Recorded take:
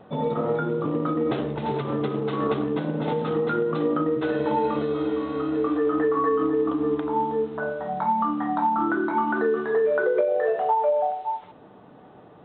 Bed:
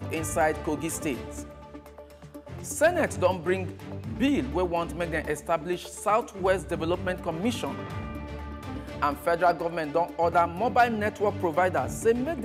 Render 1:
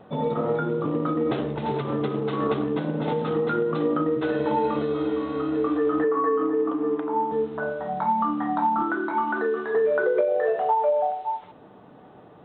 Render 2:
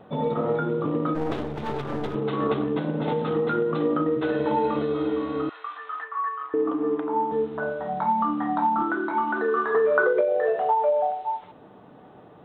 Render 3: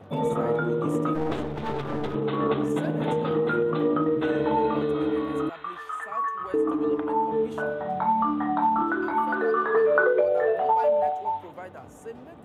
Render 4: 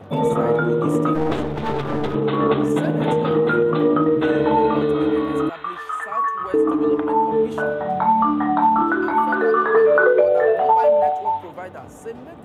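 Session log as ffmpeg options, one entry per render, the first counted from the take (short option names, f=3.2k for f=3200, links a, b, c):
-filter_complex "[0:a]asettb=1/sr,asplit=3[a][b][c];[a]atrim=end=6.044[d];[b]atrim=start=6.04:end=7.32,asetpts=PTS-STARTPTS,afade=t=in:d=0.004:c=qsin,afade=t=out:st=1.276:d=0.004:c=qsin,highpass=240,lowpass=2.3k[e];[c]atrim=start=7.316[f];[d][e]acrossfade=d=0.004:c1=hsin:c2=qsin[g];[g][f]acrossfade=d=0.004:c1=qsin:c2=hsin,asettb=1/sr,asplit=3[h][i][j];[h]atrim=end=8.824[k];[i]atrim=start=8.82:end=9.75,asetpts=PTS-STARTPTS,afade=t=in:d=0.004:c=qsin,afade=t=out:st=0.926:d=0.004:c=qsin,highpass=f=360:p=1[l];[j]atrim=start=9.746[m];[k][l]acrossfade=d=0.004:c1=hsin:c2=qsin[n];[n][m]acrossfade=d=0.004:c1=qsin:c2=hsin"
-filter_complex "[0:a]asplit=3[a][b][c];[a]afade=t=out:st=1.14:d=0.02[d];[b]aeval=exprs='clip(val(0),-1,0.015)':c=same,afade=t=in:st=1.14:d=0.02,afade=t=out:st=2.14:d=0.02[e];[c]afade=t=in:st=2.14:d=0.02[f];[d][e][f]amix=inputs=3:normalize=0,asettb=1/sr,asplit=3[g][h][i];[g]atrim=end=5.494[j];[h]atrim=start=5.49:end=6.54,asetpts=PTS-STARTPTS,afade=t=in:d=0.004:c=qsin,afade=t=out:st=1.046:d=0.004:c=qsin,highpass=f=1k:w=0.5412,highpass=f=1k:w=1.3066[k];[i]atrim=start=6.536[l];[j][k]acrossfade=d=0.004:c1=hsin:c2=qsin[m];[m][l]acrossfade=d=0.004:c1=qsin:c2=hsin,asettb=1/sr,asplit=3[n][o][p];[n]atrim=end=9.484[q];[o]atrim=start=9.48:end=10.13,asetpts=PTS-STARTPTS,afade=t=in:d=0.004:c=qsin,afade=t=out:st=0.646:d=0.004:c=qsin,equalizer=f=1.2k:w=2.5:g=13[r];[p]atrim=start=10.126[s];[q][r]acrossfade=d=0.004:c1=hsin:c2=qsin[t];[t][s]acrossfade=d=0.004:c1=qsin:c2=hsin"
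-filter_complex "[1:a]volume=-17dB[a];[0:a][a]amix=inputs=2:normalize=0"
-af "volume=6.5dB,alimiter=limit=-2dB:level=0:latency=1"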